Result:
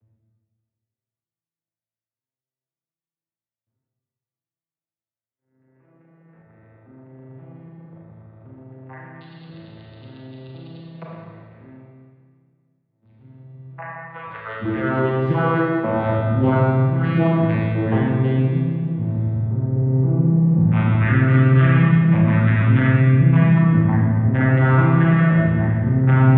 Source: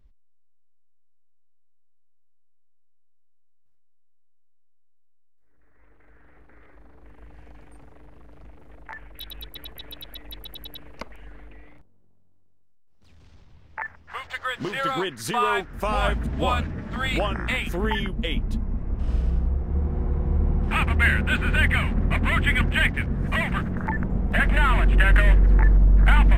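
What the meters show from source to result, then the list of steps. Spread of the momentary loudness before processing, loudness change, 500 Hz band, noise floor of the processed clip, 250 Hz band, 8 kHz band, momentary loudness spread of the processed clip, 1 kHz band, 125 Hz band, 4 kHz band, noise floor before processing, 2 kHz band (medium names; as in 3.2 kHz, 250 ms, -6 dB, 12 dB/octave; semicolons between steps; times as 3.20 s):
21 LU, +6.0 dB, +7.5 dB, under -85 dBFS, +11.5 dB, under -30 dB, 9 LU, +1.5 dB, +10.5 dB, under -10 dB, -53 dBFS, -2.0 dB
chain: vocoder on a broken chord minor triad, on A2, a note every 527 ms; distance through air 440 m; Schroeder reverb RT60 1.8 s, combs from 27 ms, DRR -4.5 dB; trim +5 dB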